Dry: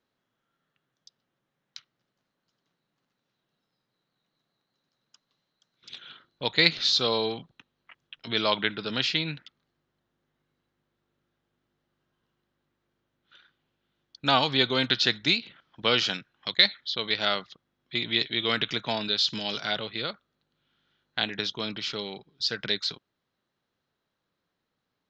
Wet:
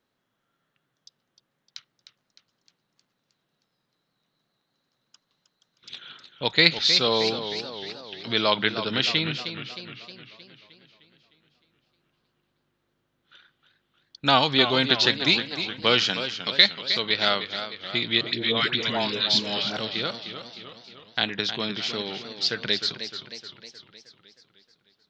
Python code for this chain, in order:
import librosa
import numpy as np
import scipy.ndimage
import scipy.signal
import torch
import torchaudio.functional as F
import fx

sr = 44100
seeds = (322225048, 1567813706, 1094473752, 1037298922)

y = fx.dispersion(x, sr, late='highs', ms=121.0, hz=660.0, at=(18.21, 19.77))
y = fx.echo_warbled(y, sr, ms=309, feedback_pct=56, rate_hz=2.8, cents=120, wet_db=-10)
y = F.gain(torch.from_numpy(y), 3.0).numpy()